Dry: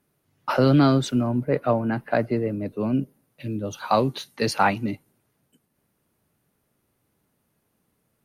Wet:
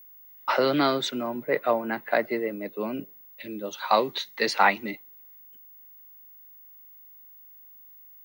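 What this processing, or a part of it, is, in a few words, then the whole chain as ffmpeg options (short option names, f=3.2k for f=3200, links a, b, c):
old television with a line whistle: -af "highpass=f=220:w=0.5412,highpass=f=220:w=1.3066,equalizer=f=260:t=q:w=4:g=-9,equalizer=f=1k:t=q:w=4:g=3,equalizer=f=2k:t=q:w=4:g=10,equalizer=f=3.7k:t=q:w=4:g=7,lowpass=f=7.8k:w=0.5412,lowpass=f=7.8k:w=1.3066,aeval=exprs='val(0)+0.00501*sin(2*PI*15625*n/s)':c=same,volume=-1.5dB"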